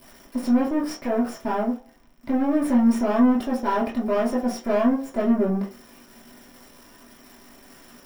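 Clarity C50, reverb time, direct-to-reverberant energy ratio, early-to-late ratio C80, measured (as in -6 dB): 8.5 dB, 0.40 s, -8.0 dB, 14.5 dB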